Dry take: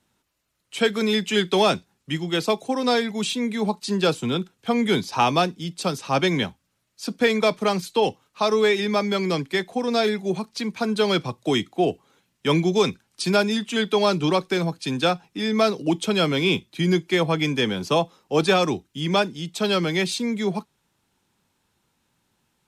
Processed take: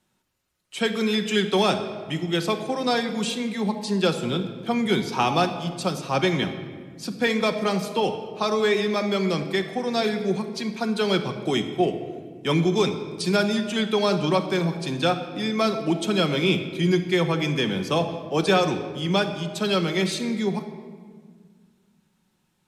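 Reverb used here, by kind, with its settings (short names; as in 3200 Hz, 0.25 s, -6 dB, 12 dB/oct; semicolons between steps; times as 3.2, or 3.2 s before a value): shoebox room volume 2400 m³, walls mixed, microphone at 1 m; gain -2.5 dB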